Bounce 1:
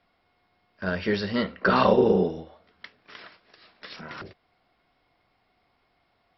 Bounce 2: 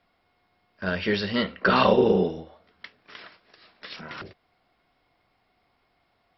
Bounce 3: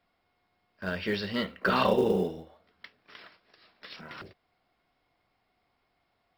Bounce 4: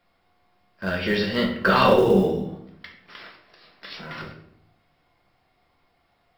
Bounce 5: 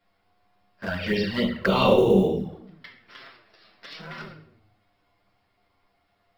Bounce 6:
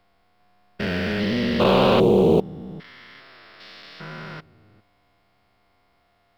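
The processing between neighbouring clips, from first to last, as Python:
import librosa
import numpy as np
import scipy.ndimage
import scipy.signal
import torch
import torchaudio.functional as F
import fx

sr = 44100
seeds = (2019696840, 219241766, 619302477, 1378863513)

y1 = fx.dynamic_eq(x, sr, hz=3000.0, q=1.3, threshold_db=-47.0, ratio=4.0, max_db=6)
y2 = fx.quant_float(y1, sr, bits=4)
y2 = y2 * 10.0 ** (-5.5 / 20.0)
y3 = fx.room_shoebox(y2, sr, seeds[0], volume_m3=140.0, walls='mixed', distance_m=0.82)
y3 = y3 * 10.0 ** (5.0 / 20.0)
y4 = fx.env_flanger(y3, sr, rest_ms=10.2, full_db=-18.0)
y5 = fx.spec_steps(y4, sr, hold_ms=400)
y5 = fx.doppler_dist(y5, sr, depth_ms=0.21)
y5 = y5 * 10.0 ** (6.0 / 20.0)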